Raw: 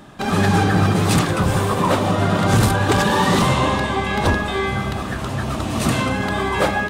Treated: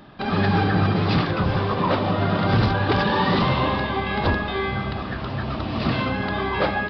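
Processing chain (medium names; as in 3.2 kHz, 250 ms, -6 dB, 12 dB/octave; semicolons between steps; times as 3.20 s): resampled via 11.025 kHz; trim -3.5 dB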